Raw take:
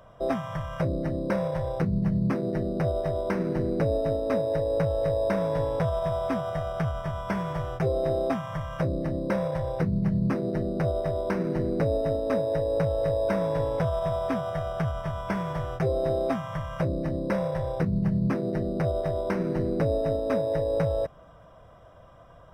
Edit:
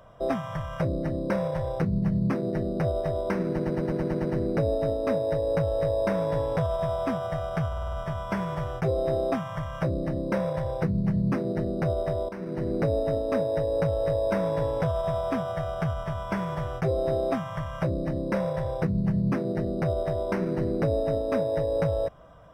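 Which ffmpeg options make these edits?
-filter_complex "[0:a]asplit=14[s0][s1][s2][s3][s4][s5][s6][s7][s8][s9][s10][s11][s12][s13];[s0]atrim=end=3.592[s14];[s1]atrim=start=3.478:end=3.592[s15];[s2]atrim=start=3.478:end=3.592[s16];[s3]atrim=start=3.478:end=3.592[s17];[s4]atrim=start=3.478:end=3.592[s18];[s5]atrim=start=3.478:end=3.592[s19];[s6]atrim=start=3.478:end=3.592[s20];[s7]atrim=start=3.478:end=6.962[s21];[s8]atrim=start=6.908:end=6.962[s22];[s9]atrim=start=6.908:end=6.962[s23];[s10]atrim=start=6.908:end=6.962[s24];[s11]atrim=start=6.908:end=6.962[s25];[s12]atrim=start=6.908:end=11.27,asetpts=PTS-STARTPTS,afade=t=out:st=4.358:d=0.004:c=hsin:silence=0.211349[s26];[s13]atrim=start=11.27,asetpts=PTS-STARTPTS,afade=t=in:d=0.46:silence=0.211349[s27];[s14][s15]acrossfade=d=0.004:c1=hsin:c2=hsin[s28];[s28][s16]acrossfade=d=0.004:c1=hsin:c2=hsin[s29];[s29][s17]acrossfade=d=0.004:c1=hsin:c2=hsin[s30];[s30][s18]acrossfade=d=0.004:c1=hsin:c2=hsin[s31];[s31][s19]acrossfade=d=0.004:c1=hsin:c2=hsin[s32];[s32][s20]acrossfade=d=0.004:c1=hsin:c2=hsin[s33];[s33][s21]acrossfade=d=0.004:c1=hsin:c2=hsin[s34];[s34][s22]acrossfade=d=0.004:c1=hsin:c2=hsin[s35];[s35][s23]acrossfade=d=0.004:c1=hsin:c2=hsin[s36];[s36][s24]acrossfade=d=0.004:c1=hsin:c2=hsin[s37];[s37][s25]acrossfade=d=0.004:c1=hsin:c2=hsin[s38];[s26][s27]concat=n=2:v=0:a=1[s39];[s38][s39]acrossfade=d=0.004:c1=hsin:c2=hsin"

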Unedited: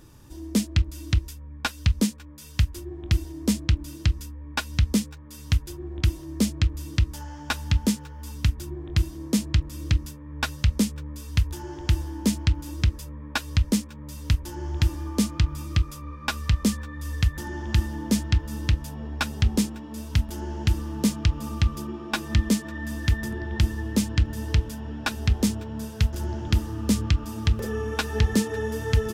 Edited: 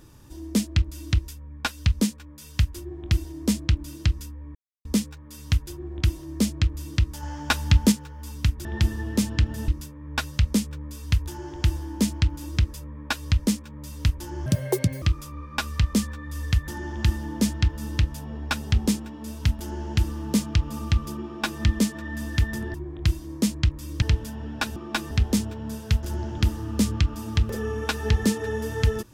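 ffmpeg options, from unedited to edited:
-filter_complex "[0:a]asplit=13[s0][s1][s2][s3][s4][s5][s6][s7][s8][s9][s10][s11][s12];[s0]atrim=end=4.55,asetpts=PTS-STARTPTS,afade=t=out:st=4.546:d=0.004:c=hsin[s13];[s1]atrim=start=4.55:end=4.85,asetpts=PTS-STARTPTS,volume=0[s14];[s2]atrim=start=4.85:end=7.232,asetpts=PTS-STARTPTS,afade=t=in:d=0.004:c=hsin[s15];[s3]atrim=start=7.228:end=7.922,asetpts=PTS-STARTPTS,volume=1.68[s16];[s4]atrim=start=7.918:end=8.652[s17];[s5]atrim=start=23.438:end=24.472[s18];[s6]atrim=start=9.928:end=14.714[s19];[s7]atrim=start=14.71:end=15.72,asetpts=PTS-STARTPTS,asetrate=79380,aresample=44100[s20];[s8]atrim=start=15.716:end=23.442[s21];[s9]atrim=start=8.648:end=9.932[s22];[s10]atrim=start=24.468:end=25.212[s23];[s11]atrim=start=21.948:end=22.302[s24];[s12]atrim=start=25.208[s25];[s13][s14][s15]concat=n=3:v=0:a=1[s26];[s26][s16]acrossfade=d=0.004:c1=hsin:c2=hsin[s27];[s27][s17]acrossfade=d=0.004:c1=hsin:c2=hsin[s28];[s28][s18]acrossfade=d=0.004:c1=hsin:c2=hsin[s29];[s29][s19]acrossfade=d=0.004:c1=hsin:c2=hsin[s30];[s30][s20]acrossfade=d=0.004:c1=hsin:c2=hsin[s31];[s31][s21]acrossfade=d=0.004:c1=hsin:c2=hsin[s32];[s32][s22]acrossfade=d=0.004:c1=hsin:c2=hsin[s33];[s33][s23]acrossfade=d=0.004:c1=hsin:c2=hsin[s34];[s34][s24]acrossfade=d=0.004:c1=hsin:c2=hsin[s35];[s35][s25]acrossfade=d=0.004:c1=hsin:c2=hsin"

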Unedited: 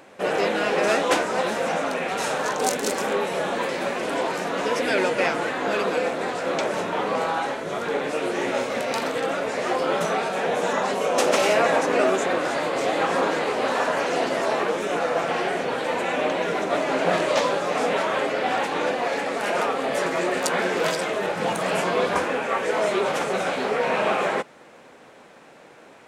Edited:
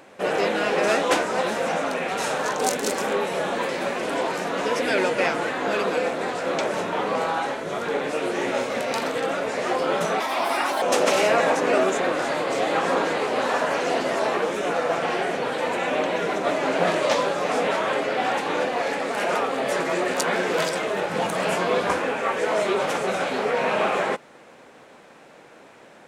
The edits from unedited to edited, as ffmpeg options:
-filter_complex "[0:a]asplit=3[s0][s1][s2];[s0]atrim=end=10.204[s3];[s1]atrim=start=10.2:end=11.08,asetpts=PTS-STARTPTS,asetrate=62622,aresample=44100[s4];[s2]atrim=start=11.076[s5];[s3][s4]acrossfade=d=0.004:c1=hsin:c2=hsin[s6];[s6][s5]acrossfade=d=0.004:c1=hsin:c2=hsin"

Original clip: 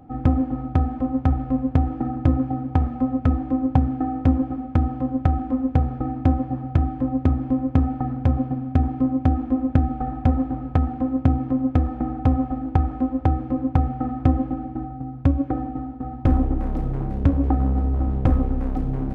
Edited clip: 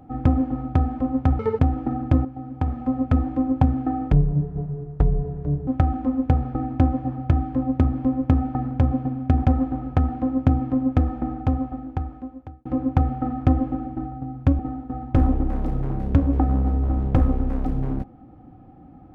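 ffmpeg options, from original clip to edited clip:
-filter_complex "[0:a]asplit=9[s0][s1][s2][s3][s4][s5][s6][s7][s8];[s0]atrim=end=1.394[s9];[s1]atrim=start=1.39:end=1.73,asetpts=PTS-STARTPTS,asetrate=74970,aresample=44100[s10];[s2]atrim=start=1.726:end=2.39,asetpts=PTS-STARTPTS,afade=t=out:st=0.66:d=0.004:c=hsin:silence=0.223872[s11];[s3]atrim=start=2.39:end=4.264,asetpts=PTS-STARTPTS,afade=t=in:d=0.78:silence=0.223872[s12];[s4]atrim=start=4.26:end=5.13,asetpts=PTS-STARTPTS,asetrate=24696,aresample=44100,atrim=end_sample=68512,asetpts=PTS-STARTPTS[s13];[s5]atrim=start=5.126:end=8.902[s14];[s6]atrim=start=10.228:end=13.44,asetpts=PTS-STARTPTS,afade=t=out:st=1.582:d=1.63[s15];[s7]atrim=start=13.44:end=15.382,asetpts=PTS-STARTPTS,afade=t=in:d=0.004:c=hsin[s16];[s8]atrim=start=15.698[s17];[s9][s10]acrossfade=d=0.004:c1=hsin:c2=hsin[s18];[s11][s12]concat=n=2:v=0:a=1[s19];[s18][s19]acrossfade=d=0.004:c1=hsin:c2=hsin[s20];[s20][s13]acrossfade=d=0.004:c1=hsin:c2=hsin[s21];[s21][s14]acrossfade=d=0.004:c1=hsin:c2=hsin[s22];[s15][s16]concat=n=2:v=0:a=1[s23];[s22][s23]acrossfade=d=0.004:c1=hsin:c2=hsin[s24];[s24][s17]acrossfade=d=0.004:c1=hsin:c2=hsin"

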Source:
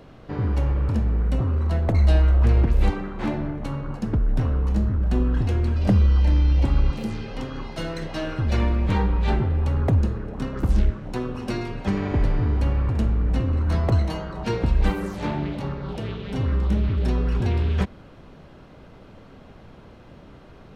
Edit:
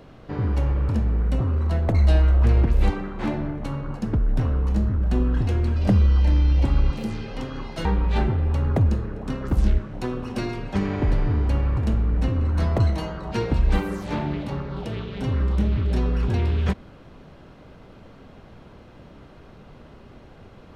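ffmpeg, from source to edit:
-filter_complex "[0:a]asplit=2[s0][s1];[s0]atrim=end=7.852[s2];[s1]atrim=start=8.968[s3];[s2][s3]acrossfade=d=0.004:c1=hsin:c2=hsin"

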